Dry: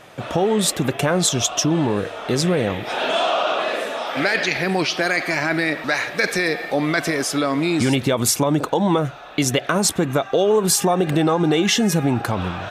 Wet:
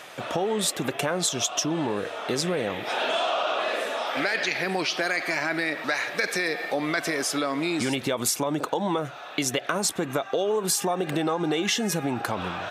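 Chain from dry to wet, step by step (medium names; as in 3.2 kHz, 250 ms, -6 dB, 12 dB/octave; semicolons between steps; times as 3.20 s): high-pass 330 Hz 6 dB/octave; compression 2.5:1, threshold -22 dBFS, peak gain reduction 6 dB; tape noise reduction on one side only encoder only; trim -1.5 dB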